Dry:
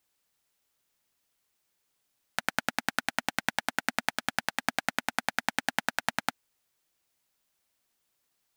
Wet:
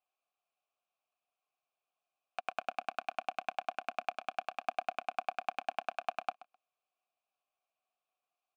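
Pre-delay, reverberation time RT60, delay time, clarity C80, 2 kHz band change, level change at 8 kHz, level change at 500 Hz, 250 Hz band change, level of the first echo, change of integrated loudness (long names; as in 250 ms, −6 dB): no reverb audible, no reverb audible, 129 ms, no reverb audible, −13.5 dB, below −20 dB, −1.0 dB, −19.5 dB, −19.0 dB, −8.0 dB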